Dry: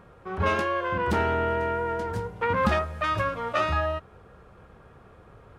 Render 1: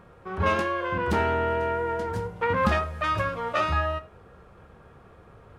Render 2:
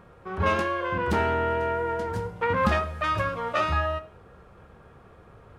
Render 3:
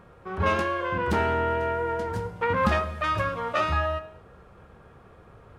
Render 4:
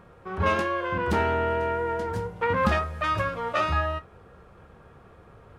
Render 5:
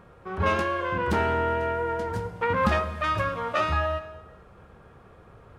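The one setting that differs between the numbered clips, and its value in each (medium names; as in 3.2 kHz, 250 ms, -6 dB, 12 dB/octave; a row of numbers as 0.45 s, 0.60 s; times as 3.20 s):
gated-style reverb, gate: 130 ms, 200 ms, 300 ms, 90 ms, 480 ms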